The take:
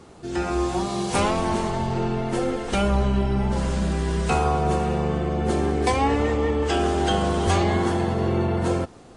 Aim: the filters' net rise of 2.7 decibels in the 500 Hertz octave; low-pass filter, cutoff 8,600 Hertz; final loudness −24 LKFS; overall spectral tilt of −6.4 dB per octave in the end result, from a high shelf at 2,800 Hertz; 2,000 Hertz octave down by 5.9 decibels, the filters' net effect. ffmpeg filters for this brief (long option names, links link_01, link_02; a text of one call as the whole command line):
ffmpeg -i in.wav -af "lowpass=8600,equalizer=frequency=500:width_type=o:gain=4,equalizer=frequency=2000:width_type=o:gain=-4.5,highshelf=frequency=2800:gain=-8.5,volume=-1.5dB" out.wav